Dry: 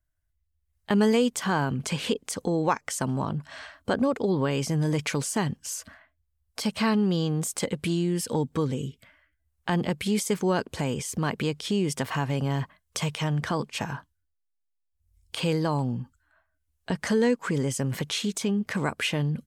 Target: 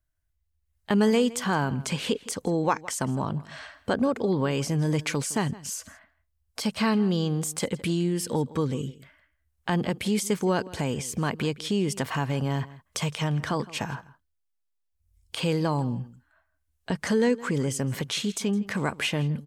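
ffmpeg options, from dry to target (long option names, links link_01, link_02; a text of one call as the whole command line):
ffmpeg -i in.wav -filter_complex "[0:a]asplit=2[link_01][link_02];[link_02]adelay=163.3,volume=-19dB,highshelf=frequency=4000:gain=-3.67[link_03];[link_01][link_03]amix=inputs=2:normalize=0" out.wav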